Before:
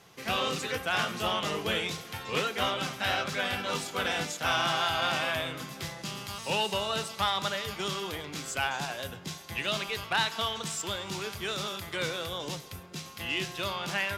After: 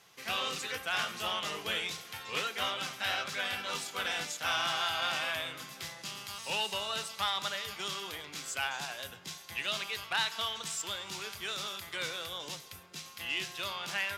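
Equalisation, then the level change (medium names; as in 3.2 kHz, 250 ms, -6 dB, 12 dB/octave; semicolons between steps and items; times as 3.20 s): tilt shelf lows -5.5 dB, about 720 Hz; -7.0 dB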